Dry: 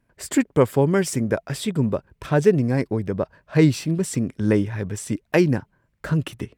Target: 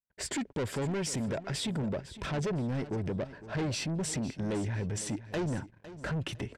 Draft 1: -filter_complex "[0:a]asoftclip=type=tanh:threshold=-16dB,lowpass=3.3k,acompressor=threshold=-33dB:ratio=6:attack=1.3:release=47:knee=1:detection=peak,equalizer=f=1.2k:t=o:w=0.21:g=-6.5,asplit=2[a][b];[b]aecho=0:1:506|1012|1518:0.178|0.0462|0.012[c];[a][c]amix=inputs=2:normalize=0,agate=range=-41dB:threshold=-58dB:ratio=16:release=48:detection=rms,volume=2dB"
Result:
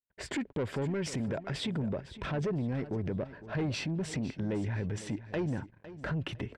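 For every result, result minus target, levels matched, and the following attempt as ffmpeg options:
8000 Hz band -8.0 dB; soft clip: distortion -5 dB
-filter_complex "[0:a]asoftclip=type=tanh:threshold=-16dB,lowpass=7k,acompressor=threshold=-33dB:ratio=6:attack=1.3:release=47:knee=1:detection=peak,equalizer=f=1.2k:t=o:w=0.21:g=-6.5,asplit=2[a][b];[b]aecho=0:1:506|1012|1518:0.178|0.0462|0.012[c];[a][c]amix=inputs=2:normalize=0,agate=range=-41dB:threshold=-58dB:ratio=16:release=48:detection=rms,volume=2dB"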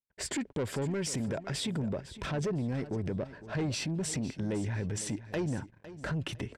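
soft clip: distortion -5 dB
-filter_complex "[0:a]asoftclip=type=tanh:threshold=-23.5dB,lowpass=7k,acompressor=threshold=-33dB:ratio=6:attack=1.3:release=47:knee=1:detection=peak,equalizer=f=1.2k:t=o:w=0.21:g=-6.5,asplit=2[a][b];[b]aecho=0:1:506|1012|1518:0.178|0.0462|0.012[c];[a][c]amix=inputs=2:normalize=0,agate=range=-41dB:threshold=-58dB:ratio=16:release=48:detection=rms,volume=2dB"

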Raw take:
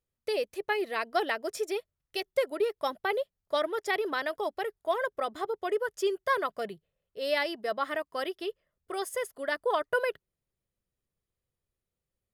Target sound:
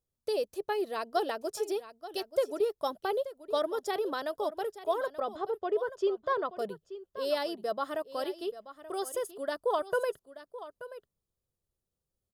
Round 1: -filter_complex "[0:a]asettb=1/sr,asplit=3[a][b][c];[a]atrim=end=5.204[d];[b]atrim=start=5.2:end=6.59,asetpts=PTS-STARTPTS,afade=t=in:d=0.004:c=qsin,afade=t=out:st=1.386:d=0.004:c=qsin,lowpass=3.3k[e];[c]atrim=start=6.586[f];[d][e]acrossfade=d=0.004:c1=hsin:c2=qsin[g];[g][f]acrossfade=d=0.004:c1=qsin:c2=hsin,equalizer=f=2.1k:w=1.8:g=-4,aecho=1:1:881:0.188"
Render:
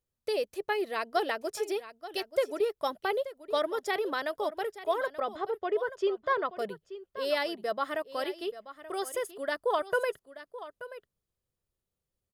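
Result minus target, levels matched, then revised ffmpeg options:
2000 Hz band +5.0 dB
-filter_complex "[0:a]asettb=1/sr,asplit=3[a][b][c];[a]atrim=end=5.204[d];[b]atrim=start=5.2:end=6.59,asetpts=PTS-STARTPTS,afade=t=in:d=0.004:c=qsin,afade=t=out:st=1.386:d=0.004:c=qsin,lowpass=3.3k[e];[c]atrim=start=6.586[f];[d][e]acrossfade=d=0.004:c1=hsin:c2=qsin[g];[g][f]acrossfade=d=0.004:c1=qsin:c2=hsin,equalizer=f=2.1k:w=1.8:g=-15,aecho=1:1:881:0.188"

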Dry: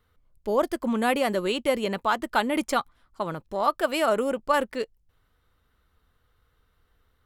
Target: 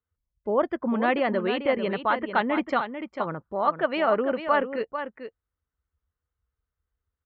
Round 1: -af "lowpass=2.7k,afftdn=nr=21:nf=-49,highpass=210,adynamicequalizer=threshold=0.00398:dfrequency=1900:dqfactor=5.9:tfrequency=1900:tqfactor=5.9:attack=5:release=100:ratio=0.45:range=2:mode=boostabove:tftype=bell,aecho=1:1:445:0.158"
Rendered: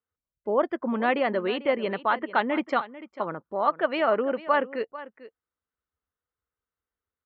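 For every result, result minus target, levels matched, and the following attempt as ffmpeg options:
echo-to-direct -7 dB; 125 Hz band -4.0 dB
-af "lowpass=2.7k,afftdn=nr=21:nf=-49,highpass=210,adynamicequalizer=threshold=0.00398:dfrequency=1900:dqfactor=5.9:tfrequency=1900:tqfactor=5.9:attack=5:release=100:ratio=0.45:range=2:mode=boostabove:tftype=bell,aecho=1:1:445:0.355"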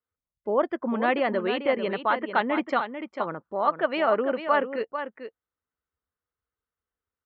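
125 Hz band -3.5 dB
-af "lowpass=2.7k,afftdn=nr=21:nf=-49,highpass=76,adynamicequalizer=threshold=0.00398:dfrequency=1900:dqfactor=5.9:tfrequency=1900:tqfactor=5.9:attack=5:release=100:ratio=0.45:range=2:mode=boostabove:tftype=bell,aecho=1:1:445:0.355"

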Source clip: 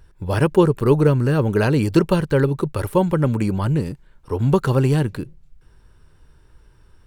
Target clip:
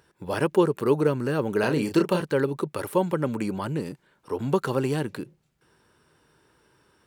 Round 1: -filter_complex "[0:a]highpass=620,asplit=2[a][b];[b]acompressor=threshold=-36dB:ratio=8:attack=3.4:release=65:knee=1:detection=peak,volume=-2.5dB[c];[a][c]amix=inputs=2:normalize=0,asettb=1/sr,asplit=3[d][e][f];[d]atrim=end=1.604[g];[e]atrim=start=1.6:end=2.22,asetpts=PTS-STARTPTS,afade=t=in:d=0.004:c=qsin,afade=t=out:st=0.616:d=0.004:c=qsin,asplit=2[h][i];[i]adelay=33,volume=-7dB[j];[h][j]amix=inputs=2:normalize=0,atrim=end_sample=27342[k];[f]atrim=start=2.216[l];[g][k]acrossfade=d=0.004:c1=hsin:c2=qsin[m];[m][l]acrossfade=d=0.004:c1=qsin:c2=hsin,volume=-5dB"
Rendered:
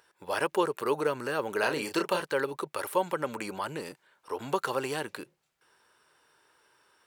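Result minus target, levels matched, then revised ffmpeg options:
250 Hz band -5.0 dB
-filter_complex "[0:a]highpass=220,asplit=2[a][b];[b]acompressor=threshold=-36dB:ratio=8:attack=3.4:release=65:knee=1:detection=peak,volume=-2.5dB[c];[a][c]amix=inputs=2:normalize=0,asettb=1/sr,asplit=3[d][e][f];[d]atrim=end=1.604[g];[e]atrim=start=1.6:end=2.22,asetpts=PTS-STARTPTS,afade=t=in:d=0.004:c=qsin,afade=t=out:st=0.616:d=0.004:c=qsin,asplit=2[h][i];[i]adelay=33,volume=-7dB[j];[h][j]amix=inputs=2:normalize=0,atrim=end_sample=27342[k];[f]atrim=start=2.216[l];[g][k]acrossfade=d=0.004:c1=hsin:c2=qsin[m];[m][l]acrossfade=d=0.004:c1=qsin:c2=hsin,volume=-5dB"

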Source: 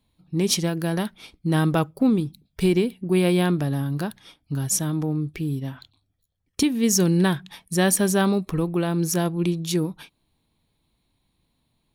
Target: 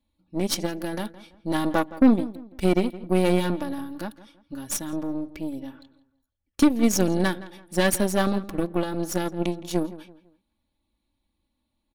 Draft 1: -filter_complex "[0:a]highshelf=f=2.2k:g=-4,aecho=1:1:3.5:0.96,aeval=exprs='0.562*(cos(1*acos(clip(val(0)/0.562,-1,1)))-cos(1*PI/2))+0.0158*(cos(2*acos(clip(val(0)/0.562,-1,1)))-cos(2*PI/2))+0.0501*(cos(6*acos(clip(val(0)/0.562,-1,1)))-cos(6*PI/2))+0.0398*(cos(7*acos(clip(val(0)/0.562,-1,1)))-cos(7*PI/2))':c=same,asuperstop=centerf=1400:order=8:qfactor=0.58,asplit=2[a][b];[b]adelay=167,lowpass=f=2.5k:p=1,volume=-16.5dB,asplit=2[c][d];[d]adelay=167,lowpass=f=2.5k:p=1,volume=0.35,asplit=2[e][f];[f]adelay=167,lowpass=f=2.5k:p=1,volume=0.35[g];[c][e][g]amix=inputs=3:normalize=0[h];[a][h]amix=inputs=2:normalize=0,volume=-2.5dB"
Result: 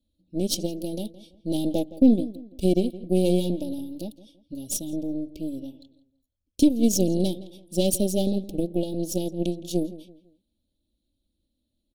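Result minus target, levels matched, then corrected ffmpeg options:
1000 Hz band -12.5 dB
-filter_complex "[0:a]highshelf=f=2.2k:g=-4,aecho=1:1:3.5:0.96,aeval=exprs='0.562*(cos(1*acos(clip(val(0)/0.562,-1,1)))-cos(1*PI/2))+0.0158*(cos(2*acos(clip(val(0)/0.562,-1,1)))-cos(2*PI/2))+0.0501*(cos(6*acos(clip(val(0)/0.562,-1,1)))-cos(6*PI/2))+0.0398*(cos(7*acos(clip(val(0)/0.562,-1,1)))-cos(7*PI/2))':c=same,asplit=2[a][b];[b]adelay=167,lowpass=f=2.5k:p=1,volume=-16.5dB,asplit=2[c][d];[d]adelay=167,lowpass=f=2.5k:p=1,volume=0.35,asplit=2[e][f];[f]adelay=167,lowpass=f=2.5k:p=1,volume=0.35[g];[c][e][g]amix=inputs=3:normalize=0[h];[a][h]amix=inputs=2:normalize=0,volume=-2.5dB"

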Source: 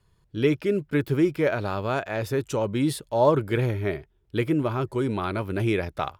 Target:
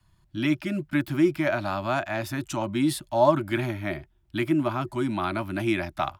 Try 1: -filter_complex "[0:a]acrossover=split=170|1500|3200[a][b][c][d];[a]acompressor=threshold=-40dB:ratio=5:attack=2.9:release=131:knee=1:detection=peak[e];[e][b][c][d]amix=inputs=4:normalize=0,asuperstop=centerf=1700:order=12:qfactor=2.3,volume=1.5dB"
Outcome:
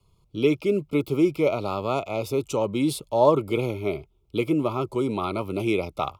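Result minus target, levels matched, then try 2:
2000 Hz band -6.0 dB
-filter_complex "[0:a]acrossover=split=170|1500|3200[a][b][c][d];[a]acompressor=threshold=-40dB:ratio=5:attack=2.9:release=131:knee=1:detection=peak[e];[e][b][c][d]amix=inputs=4:normalize=0,asuperstop=centerf=460:order=12:qfactor=2.3,volume=1.5dB"

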